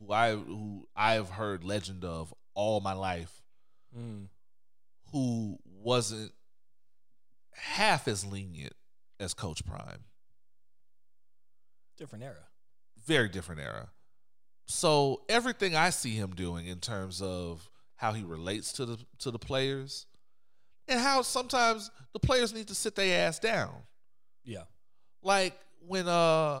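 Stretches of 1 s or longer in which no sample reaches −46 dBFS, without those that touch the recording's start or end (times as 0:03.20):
0:06.30–0:07.55
0:10.03–0:11.99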